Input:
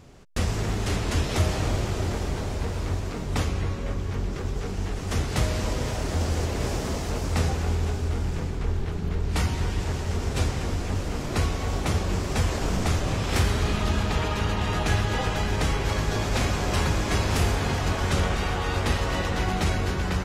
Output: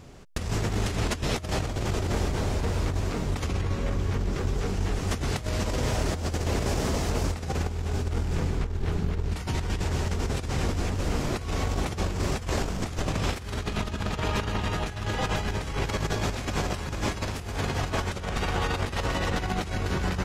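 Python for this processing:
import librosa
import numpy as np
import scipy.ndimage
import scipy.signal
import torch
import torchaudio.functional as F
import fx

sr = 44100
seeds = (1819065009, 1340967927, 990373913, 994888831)

y = fx.over_compress(x, sr, threshold_db=-27.0, ratio=-0.5)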